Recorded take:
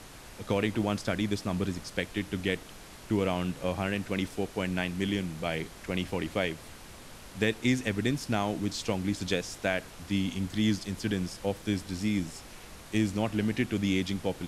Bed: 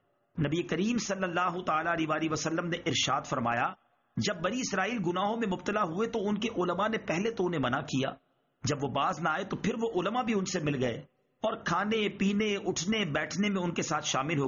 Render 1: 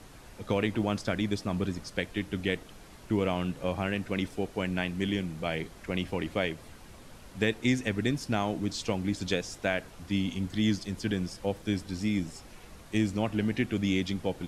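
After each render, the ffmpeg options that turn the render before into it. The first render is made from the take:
ffmpeg -i in.wav -af "afftdn=noise_reduction=6:noise_floor=-48" out.wav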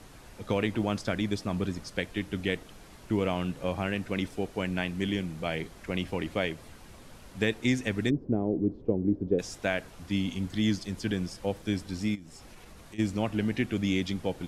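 ffmpeg -i in.wav -filter_complex "[0:a]asplit=3[link_01][link_02][link_03];[link_01]afade=type=out:start_time=8.09:duration=0.02[link_04];[link_02]lowpass=frequency=400:width_type=q:width=2.5,afade=type=in:start_time=8.09:duration=0.02,afade=type=out:start_time=9.38:duration=0.02[link_05];[link_03]afade=type=in:start_time=9.38:duration=0.02[link_06];[link_04][link_05][link_06]amix=inputs=3:normalize=0,asplit=3[link_07][link_08][link_09];[link_07]afade=type=out:start_time=12.14:duration=0.02[link_10];[link_08]acompressor=threshold=-44dB:ratio=5:attack=3.2:release=140:knee=1:detection=peak,afade=type=in:start_time=12.14:duration=0.02,afade=type=out:start_time=12.98:duration=0.02[link_11];[link_09]afade=type=in:start_time=12.98:duration=0.02[link_12];[link_10][link_11][link_12]amix=inputs=3:normalize=0" out.wav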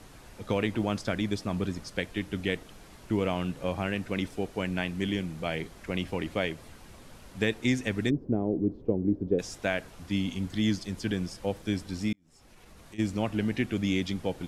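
ffmpeg -i in.wav -filter_complex "[0:a]asplit=2[link_01][link_02];[link_01]atrim=end=12.13,asetpts=PTS-STARTPTS,afade=type=out:start_time=12.126:duration=0.004:curve=hsin[link_03];[link_02]atrim=start=12.13,asetpts=PTS-STARTPTS,afade=type=in:duration=1.15:curve=qsin[link_04];[link_03][link_04]concat=n=2:v=0:a=1" out.wav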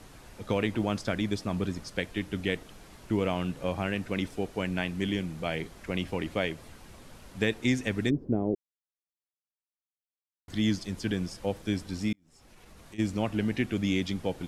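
ffmpeg -i in.wav -filter_complex "[0:a]asplit=3[link_01][link_02][link_03];[link_01]atrim=end=8.55,asetpts=PTS-STARTPTS,afade=type=out:start_time=8.546:duration=0.004:curve=hsin[link_04];[link_02]atrim=start=8.55:end=10.48,asetpts=PTS-STARTPTS,volume=0[link_05];[link_03]atrim=start=10.48,asetpts=PTS-STARTPTS,afade=type=in:duration=0.004:curve=hsin[link_06];[link_04][link_05][link_06]concat=n=3:v=0:a=1" out.wav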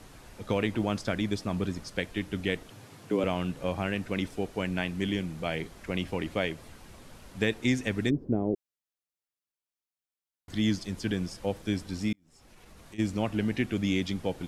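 ffmpeg -i in.wav -filter_complex "[0:a]asettb=1/sr,asplit=3[link_01][link_02][link_03];[link_01]atrim=end=2.704[link_04];[link_02]atrim=start=2.7:end=3.24,asetpts=PTS-STARTPTS,afade=type=in:duration=0.004:curve=qsin,afade=type=out:start_time=0.536:duration=0.004:curve=qsin,afreqshift=89[link_05];[link_03]atrim=start=3.236[link_06];[link_04][link_05]acrossfade=duration=0.004:curve1=hsin:curve2=qsin[link_07];[link_07][link_06]acrossfade=duration=0.004:curve1=qsin:curve2=hsin" out.wav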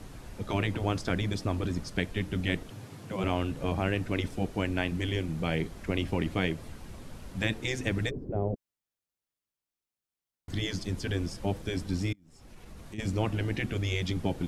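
ffmpeg -i in.wav -af "afftfilt=real='re*lt(hypot(re,im),0.2)':imag='im*lt(hypot(re,im),0.2)':win_size=1024:overlap=0.75,lowshelf=frequency=380:gain=7.5" out.wav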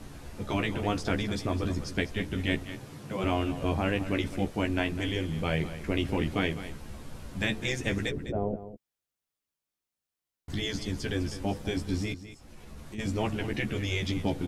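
ffmpeg -i in.wav -filter_complex "[0:a]asplit=2[link_01][link_02];[link_02]adelay=14,volume=-5dB[link_03];[link_01][link_03]amix=inputs=2:normalize=0,aecho=1:1:204:0.224" out.wav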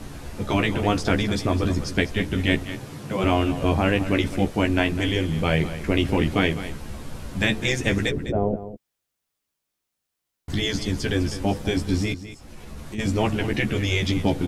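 ffmpeg -i in.wav -af "volume=7.5dB" out.wav

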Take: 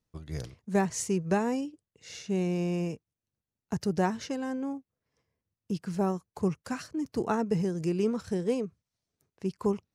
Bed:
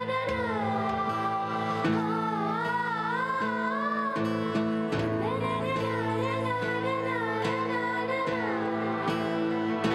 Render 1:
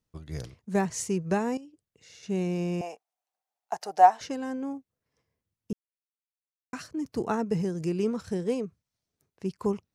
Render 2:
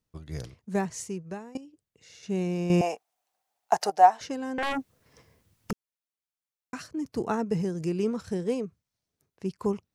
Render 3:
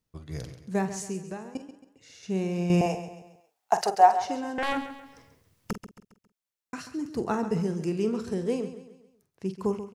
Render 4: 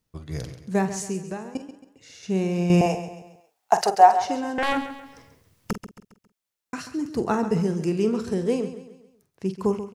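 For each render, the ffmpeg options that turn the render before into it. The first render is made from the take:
ffmpeg -i in.wav -filter_complex "[0:a]asettb=1/sr,asplit=3[link_01][link_02][link_03];[link_01]atrim=end=1.574[link_04];[link_02]atrim=start=1.57:end=2.23,asetpts=PTS-STARTPTS,afade=type=in:duration=0.004:curve=qsin,afade=type=out:start_time=0.656:duration=0.004:curve=qsin,acompressor=threshold=-55dB:ratio=2:attack=3.2:release=140:knee=1:detection=peak[link_05];[link_03]atrim=start=2.226[link_06];[link_04][link_05]acrossfade=duration=0.004:curve1=hsin:curve2=qsin[link_07];[link_07][link_06]acrossfade=duration=0.004:curve1=qsin:curve2=hsin,asettb=1/sr,asplit=3[link_08][link_09][link_10];[link_08]atrim=end=2.814[link_11];[link_09]atrim=start=2.81:end=4.21,asetpts=PTS-STARTPTS,afade=type=in:duration=0.004:curve=qsin,afade=type=out:start_time=1.396:duration=0.004:curve=qsin,highpass=frequency=740:width_type=q:width=7.9[link_12];[link_10]atrim=start=4.206[link_13];[link_11][link_12]acrossfade=duration=0.004:curve1=hsin:curve2=qsin[link_14];[link_14][link_13]acrossfade=duration=0.004:curve1=qsin:curve2=hsin,asplit=3[link_15][link_16][link_17];[link_15]atrim=end=5.73,asetpts=PTS-STARTPTS,afade=type=out:start_time=5.726:duration=0.004:curve=hsin[link_18];[link_16]atrim=start=5.73:end=6.73,asetpts=PTS-STARTPTS,volume=0[link_19];[link_17]atrim=start=6.73,asetpts=PTS-STARTPTS,afade=type=in:duration=0.004:curve=hsin[link_20];[link_18][link_19][link_20]concat=n=3:v=0:a=1" out.wav
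ffmpeg -i in.wav -filter_complex "[0:a]asettb=1/sr,asplit=3[link_01][link_02][link_03];[link_01]atrim=end=4.584[link_04];[link_02]atrim=start=4.58:end=5.71,asetpts=PTS-STARTPTS,afade=type=in:duration=0.004:curve=qsin,afade=type=out:start_time=1.126:duration=0.004:curve=qsin,aeval=exprs='0.0531*sin(PI/2*5.62*val(0)/0.0531)':channel_layout=same[link_05];[link_03]atrim=start=5.706[link_06];[link_04][link_05]acrossfade=duration=0.004:curve1=hsin:curve2=qsin[link_07];[link_07][link_06]acrossfade=duration=0.004:curve1=qsin:curve2=hsin,asplit=4[link_08][link_09][link_10][link_11];[link_08]atrim=end=1.55,asetpts=PTS-STARTPTS,afade=type=out:start_time=0.58:duration=0.97:silence=0.0794328[link_12];[link_09]atrim=start=1.55:end=2.702,asetpts=PTS-STARTPTS,afade=type=in:duration=0.004:curve=hsin:silence=0.0794328[link_13];[link_10]atrim=start=2.698:end=3.902,asetpts=PTS-STARTPTS,volume=9dB[link_14];[link_11]atrim=start=3.898[link_15];[link_12][link_13]concat=n=2:v=0:a=1[link_16];[link_16][link_14]acrossfade=duration=0.004:curve1=hsin:curve2=hsin[link_17];[link_17][link_15]acrossfade=duration=0.004:curve1=hsin:curve2=hsin" out.wav
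ffmpeg -i in.wav -filter_complex "[0:a]asplit=2[link_01][link_02];[link_02]adelay=47,volume=-11dB[link_03];[link_01][link_03]amix=inputs=2:normalize=0,aecho=1:1:136|272|408|544:0.251|0.105|0.0443|0.0186" out.wav
ffmpeg -i in.wav -af "volume=4.5dB,alimiter=limit=-3dB:level=0:latency=1" out.wav

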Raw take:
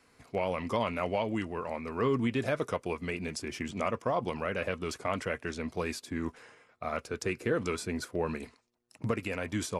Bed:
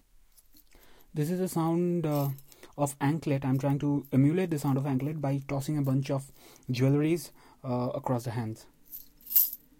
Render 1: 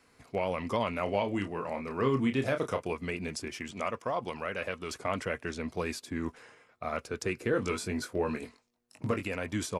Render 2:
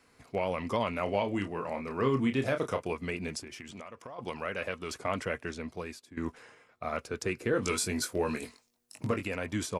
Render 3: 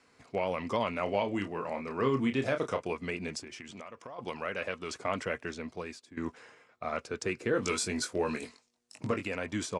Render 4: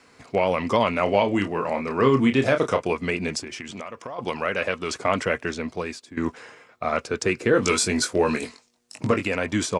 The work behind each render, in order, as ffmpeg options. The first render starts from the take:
ffmpeg -i in.wav -filter_complex "[0:a]asplit=3[link_01][link_02][link_03];[link_01]afade=type=out:start_time=1.06:duration=0.02[link_04];[link_02]asplit=2[link_05][link_06];[link_06]adelay=30,volume=-7.5dB[link_07];[link_05][link_07]amix=inputs=2:normalize=0,afade=type=in:start_time=1.06:duration=0.02,afade=type=out:start_time=2.91:duration=0.02[link_08];[link_03]afade=type=in:start_time=2.91:duration=0.02[link_09];[link_04][link_08][link_09]amix=inputs=3:normalize=0,asettb=1/sr,asplit=3[link_10][link_11][link_12];[link_10]atrim=end=3.484[link_13];[link_11]atrim=start=3.48:end=4.91,asetpts=PTS-STARTPTS,afade=type=in:duration=0.004:curve=qsin,afade=type=out:start_time=1.426:duration=0.004:curve=qsin,lowshelf=frequency=480:gain=-6.5[link_14];[link_12]atrim=start=4.906[link_15];[link_13][link_14]acrossfade=duration=0.004:curve1=hsin:curve2=qsin[link_16];[link_16][link_15]acrossfade=duration=0.004:curve1=qsin:curve2=hsin,asettb=1/sr,asplit=3[link_17][link_18][link_19];[link_17]atrim=end=7.514[link_20];[link_18]atrim=start=7.51:end=9.23,asetpts=PTS-STARTPTS,afade=type=in:duration=0.004:curve=qsin,afade=type=out:start_time=1.716:duration=0.004:curve=qsin,asplit=2[link_21][link_22];[link_22]adelay=21,volume=-6dB[link_23];[link_21][link_23]amix=inputs=2:normalize=0,atrim=end_sample=75852[link_24];[link_19]atrim=start=9.226[link_25];[link_20][link_24]acrossfade=duration=0.004:curve1=hsin:curve2=qsin[link_26];[link_26][link_25]acrossfade=duration=0.004:curve1=qsin:curve2=hsin" out.wav
ffmpeg -i in.wav -filter_complex "[0:a]asplit=3[link_01][link_02][link_03];[link_01]afade=type=out:start_time=3.4:duration=0.02[link_04];[link_02]acompressor=threshold=-40dB:ratio=12:attack=3.2:release=140:knee=1:detection=peak,afade=type=in:start_time=3.4:duration=0.02,afade=type=out:start_time=4.18:duration=0.02[link_05];[link_03]afade=type=in:start_time=4.18:duration=0.02[link_06];[link_04][link_05][link_06]amix=inputs=3:normalize=0,asettb=1/sr,asplit=3[link_07][link_08][link_09];[link_07]atrim=end=7.634[link_10];[link_08]atrim=start=7.63:end=9.07,asetpts=PTS-STARTPTS,afade=type=in:duration=0.004:curve=qsin,afade=type=out:start_time=1.436:duration=0.004:curve=qsin,highshelf=frequency=3900:gain=11.5[link_11];[link_09]atrim=start=9.066[link_12];[link_10][link_11]acrossfade=duration=0.004:curve1=hsin:curve2=qsin[link_13];[link_13][link_12]acrossfade=duration=0.004:curve1=qsin:curve2=hsin,asplit=2[link_14][link_15];[link_14]atrim=end=6.17,asetpts=PTS-STARTPTS,afade=type=out:start_time=5.35:duration=0.82:silence=0.158489[link_16];[link_15]atrim=start=6.17,asetpts=PTS-STARTPTS,afade=type=in:duration=0.004:curve=hsin:silence=0.158489[link_17];[link_16][link_17]concat=n=2:v=0:a=1" out.wav
ffmpeg -i in.wav -af "lowpass=frequency=8700:width=0.5412,lowpass=frequency=8700:width=1.3066,lowshelf=frequency=77:gain=-10.5" out.wav
ffmpeg -i in.wav -af "volume=10dB" out.wav

